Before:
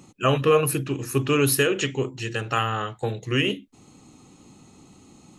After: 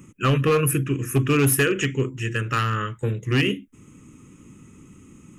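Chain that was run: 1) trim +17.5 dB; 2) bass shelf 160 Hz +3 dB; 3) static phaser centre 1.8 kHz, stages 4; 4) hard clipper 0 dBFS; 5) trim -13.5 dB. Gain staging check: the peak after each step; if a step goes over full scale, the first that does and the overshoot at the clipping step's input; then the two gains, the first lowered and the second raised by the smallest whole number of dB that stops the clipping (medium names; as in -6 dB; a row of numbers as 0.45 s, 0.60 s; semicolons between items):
+10.0 dBFS, +10.0 dBFS, +7.0 dBFS, 0.0 dBFS, -13.5 dBFS; step 1, 7.0 dB; step 1 +10.5 dB, step 5 -6.5 dB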